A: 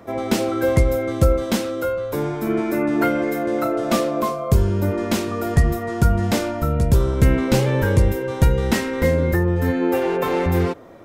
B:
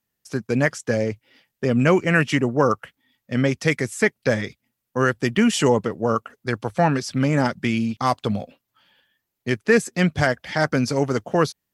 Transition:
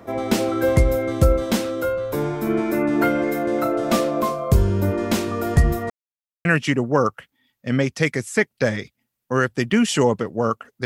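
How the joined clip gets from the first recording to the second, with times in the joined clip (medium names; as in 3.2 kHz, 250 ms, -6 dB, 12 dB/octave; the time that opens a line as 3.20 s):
A
5.90–6.45 s: mute
6.45 s: go over to B from 2.10 s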